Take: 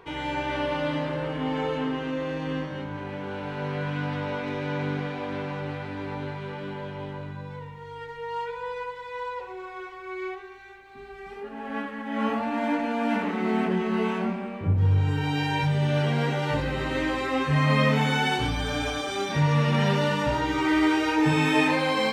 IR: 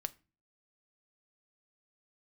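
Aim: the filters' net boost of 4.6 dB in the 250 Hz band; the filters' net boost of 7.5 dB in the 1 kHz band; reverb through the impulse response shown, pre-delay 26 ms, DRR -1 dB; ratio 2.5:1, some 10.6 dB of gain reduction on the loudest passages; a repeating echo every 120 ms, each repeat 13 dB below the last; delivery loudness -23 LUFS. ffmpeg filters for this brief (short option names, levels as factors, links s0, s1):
-filter_complex "[0:a]equalizer=f=250:t=o:g=5.5,equalizer=f=1000:t=o:g=8.5,acompressor=threshold=0.0316:ratio=2.5,aecho=1:1:120|240|360:0.224|0.0493|0.0108,asplit=2[s0][s1];[1:a]atrim=start_sample=2205,adelay=26[s2];[s1][s2]afir=irnorm=-1:irlink=0,volume=1.26[s3];[s0][s3]amix=inputs=2:normalize=0,volume=1.68"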